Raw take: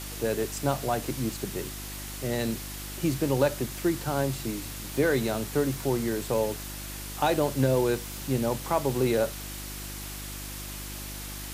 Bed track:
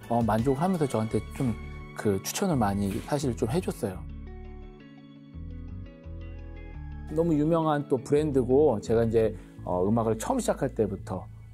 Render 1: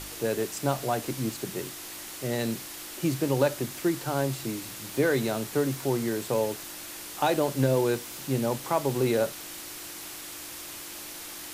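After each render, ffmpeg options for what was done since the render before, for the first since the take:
-af "bandreject=f=50:t=h:w=4,bandreject=f=100:t=h:w=4,bandreject=f=150:t=h:w=4,bandreject=f=200:t=h:w=4,bandreject=f=250:t=h:w=4"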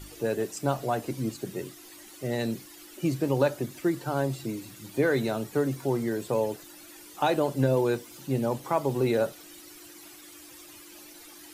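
-af "afftdn=nr=13:nf=-41"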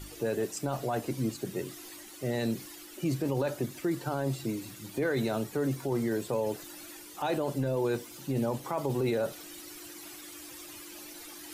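-af "alimiter=limit=-21.5dB:level=0:latency=1:release=13,areverse,acompressor=mode=upward:threshold=-40dB:ratio=2.5,areverse"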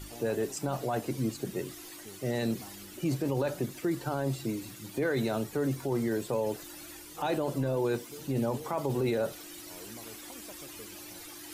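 -filter_complex "[1:a]volume=-24.5dB[a];[0:a][a]amix=inputs=2:normalize=0"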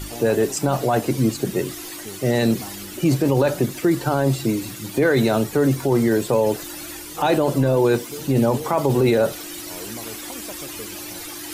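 -af "volume=12dB"

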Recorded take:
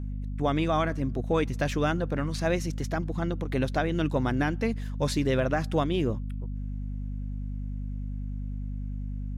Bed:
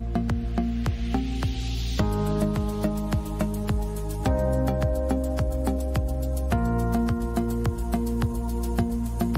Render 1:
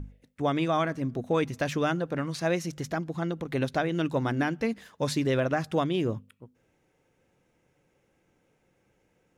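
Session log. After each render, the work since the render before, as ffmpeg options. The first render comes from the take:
-af "bandreject=f=50:t=h:w=6,bandreject=f=100:t=h:w=6,bandreject=f=150:t=h:w=6,bandreject=f=200:t=h:w=6,bandreject=f=250:t=h:w=6"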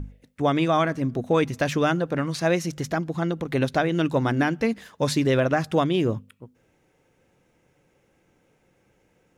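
-af "volume=5dB"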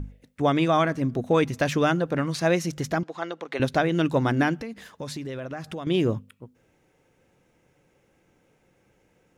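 -filter_complex "[0:a]asettb=1/sr,asplit=3[a][b][c];[a]atrim=end=3.034[d];[b]atrim=start=3.03:end=3.6,asetpts=PTS-STARTPTS,afade=t=in:d=0.004:c=qsin,afade=t=out:st=0.566:d=0.004:c=qsin,highpass=530,lowpass=6.2k[e];[c]atrim=start=3.596[f];[d][e]acrossfade=d=0.004:c1=hsin:c2=qsin[g];[g][f]acrossfade=d=0.004:c1=qsin:c2=hsin,asettb=1/sr,asplit=3[h][i][j];[h]atrim=end=4.604[k];[i]atrim=start=4.6:end=5.87,asetpts=PTS-STARTPTS,afade=t=in:d=0.004:c=qsin,afade=t=out:st=1.266:d=0.004:c=qsin,acompressor=threshold=-33dB:ratio=4:attack=3.2:release=140:knee=1:detection=peak[l];[j]atrim=start=5.866[m];[k][l]acrossfade=d=0.004:c1=hsin:c2=qsin[n];[n][m]acrossfade=d=0.004:c1=qsin:c2=hsin"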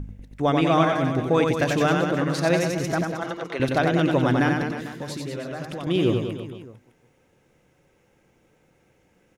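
-af "aecho=1:1:90|193.5|312.5|449.4|606.8:0.631|0.398|0.251|0.158|0.1"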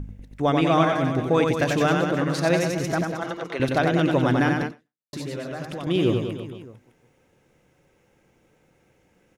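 -filter_complex "[0:a]asplit=2[a][b];[a]atrim=end=5.13,asetpts=PTS-STARTPTS,afade=t=out:st=4.66:d=0.47:c=exp[c];[b]atrim=start=5.13,asetpts=PTS-STARTPTS,afade=t=in:d=0.004:c=hsin[d];[c][d]concat=n=2:v=0:a=1"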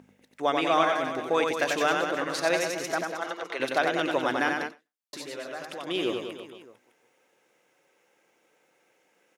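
-af "highpass=340,lowshelf=f=460:g=-7.5"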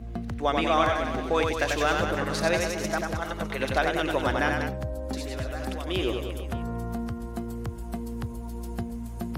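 -filter_complex "[1:a]volume=-8dB[a];[0:a][a]amix=inputs=2:normalize=0"

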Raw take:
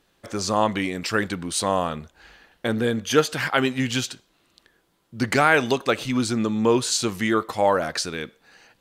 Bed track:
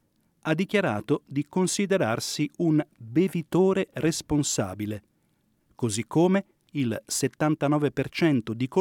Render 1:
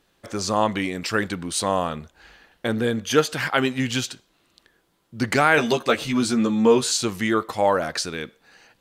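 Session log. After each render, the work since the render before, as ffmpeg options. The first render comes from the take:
-filter_complex "[0:a]asettb=1/sr,asplit=3[a][b][c];[a]atrim=end=5.564[d];[b]atrim=start=5.56:end=6.92,asetpts=PTS-STARTPTS,afade=t=in:d=0.004:c=qsin,afade=t=out:st=1.356:d=0.004:c=qsin,asplit=2[e][f];[f]adelay=13,volume=-3dB[g];[e][g]amix=inputs=2:normalize=0,atrim=end_sample=59976[h];[c]atrim=start=6.916[i];[d][h]acrossfade=d=0.004:c1=hsin:c2=qsin[j];[j][i]acrossfade=d=0.004:c1=qsin:c2=hsin"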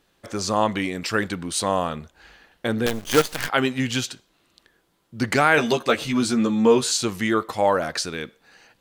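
-filter_complex "[0:a]asettb=1/sr,asplit=3[a][b][c];[a]atrim=end=2.864[d];[b]atrim=start=2.86:end=3.49,asetpts=PTS-STARTPTS,afade=t=in:d=0.004:c=qsin,afade=t=out:st=0.626:d=0.004:c=qsin,acrusher=bits=4:dc=4:mix=0:aa=0.000001[e];[c]atrim=start=3.486[f];[d][e]acrossfade=d=0.004:c1=hsin:c2=qsin[g];[g][f]acrossfade=d=0.004:c1=qsin:c2=hsin"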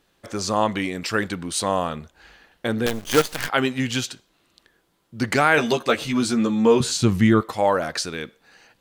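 -filter_complex "[0:a]asettb=1/sr,asplit=3[a][b][c];[a]atrim=end=6.804[d];[b]atrim=start=6.8:end=7.41,asetpts=PTS-STARTPTS,afade=t=in:d=0.004:c=qsin,afade=t=out:st=0.606:d=0.004:c=qsin,bass=f=250:g=15,treble=f=4k:g=-3[e];[c]atrim=start=7.406[f];[d][e]acrossfade=d=0.004:c1=hsin:c2=qsin[g];[g][f]acrossfade=d=0.004:c1=qsin:c2=hsin"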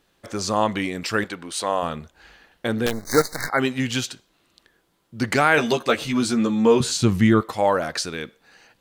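-filter_complex "[0:a]asettb=1/sr,asplit=3[a][b][c];[a]atrim=end=1.244[d];[b]atrim=start=1.24:end=1.83,asetpts=PTS-STARTPTS,afade=t=in:d=0.004:c=qsin,afade=t=out:st=0.586:d=0.004:c=qsin,bass=f=250:g=-13,treble=f=4k:g=-4[e];[c]atrim=start=1.826[f];[d][e]acrossfade=d=0.004:c1=hsin:c2=qsin[g];[g][f]acrossfade=d=0.004:c1=qsin:c2=hsin,asplit=3[h][i][j];[h]afade=t=out:st=2.91:d=0.02[k];[i]asuperstop=centerf=2900:order=20:qfactor=1.9,afade=t=in:st=2.91:d=0.02,afade=t=out:st=3.59:d=0.02[l];[j]afade=t=in:st=3.59:d=0.02[m];[k][l][m]amix=inputs=3:normalize=0"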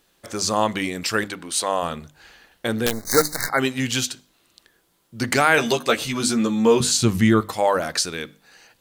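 -af "highshelf=f=5.1k:g=9,bandreject=f=50:t=h:w=6,bandreject=f=100:t=h:w=6,bandreject=f=150:t=h:w=6,bandreject=f=200:t=h:w=6,bandreject=f=250:t=h:w=6,bandreject=f=300:t=h:w=6"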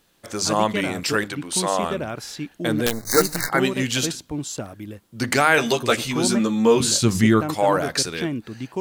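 -filter_complex "[1:a]volume=-4.5dB[a];[0:a][a]amix=inputs=2:normalize=0"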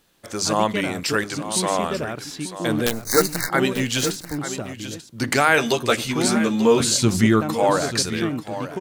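-af "aecho=1:1:888:0.251"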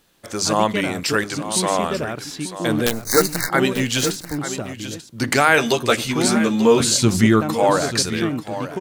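-af "volume=2dB,alimiter=limit=-1dB:level=0:latency=1"

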